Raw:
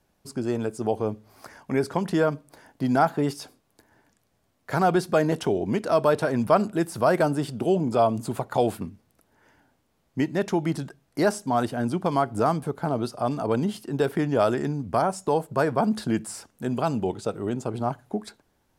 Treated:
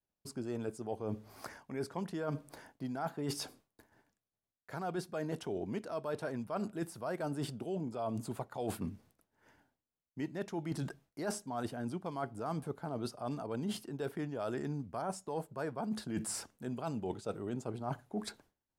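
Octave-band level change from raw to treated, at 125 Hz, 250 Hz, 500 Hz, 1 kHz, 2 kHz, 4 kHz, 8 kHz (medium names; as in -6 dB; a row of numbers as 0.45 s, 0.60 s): -12.0 dB, -13.0 dB, -15.5 dB, -16.0 dB, -15.0 dB, -9.0 dB, -6.0 dB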